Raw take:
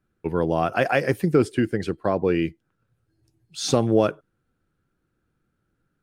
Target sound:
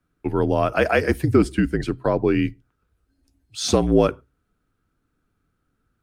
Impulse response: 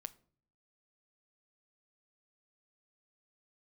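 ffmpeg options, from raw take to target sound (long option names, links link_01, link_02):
-filter_complex "[0:a]bandreject=frequency=60:width_type=h:width=6,bandreject=frequency=120:width_type=h:width=6,bandreject=frequency=180:width_type=h:width=6,afreqshift=-52,asplit=2[link_01][link_02];[1:a]atrim=start_sample=2205,atrim=end_sample=6615[link_03];[link_02][link_03]afir=irnorm=-1:irlink=0,volume=-6dB[link_04];[link_01][link_04]amix=inputs=2:normalize=0"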